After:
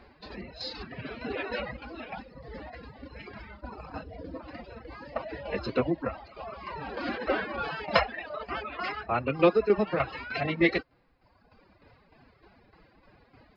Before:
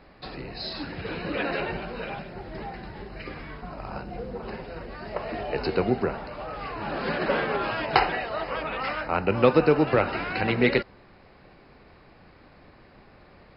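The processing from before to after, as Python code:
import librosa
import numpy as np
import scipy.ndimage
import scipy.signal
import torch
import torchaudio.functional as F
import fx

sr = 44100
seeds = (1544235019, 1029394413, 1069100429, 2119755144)

y = fx.pitch_keep_formants(x, sr, semitones=5.5)
y = fx.dereverb_blind(y, sr, rt60_s=1.3)
y = fx.tremolo_shape(y, sr, shape='saw_down', hz=3.3, depth_pct=60)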